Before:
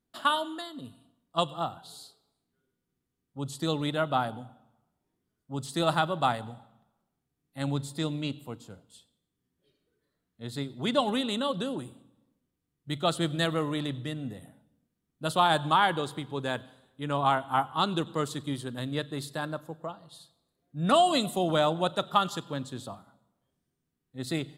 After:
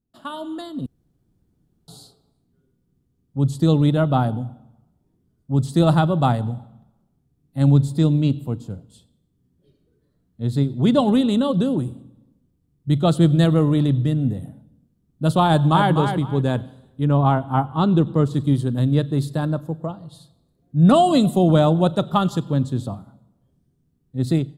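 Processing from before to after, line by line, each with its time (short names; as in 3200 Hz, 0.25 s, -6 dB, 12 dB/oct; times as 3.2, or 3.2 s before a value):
0.86–1.88 room tone
15.49–15.93 echo throw 0.25 s, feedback 20%, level -6.5 dB
17.05–18.34 high shelf 4100 Hz -11 dB
whole clip: EQ curve 130 Hz 0 dB, 2000 Hz -20 dB, 4600 Hz -17 dB; AGC gain up to 13 dB; gain +5.5 dB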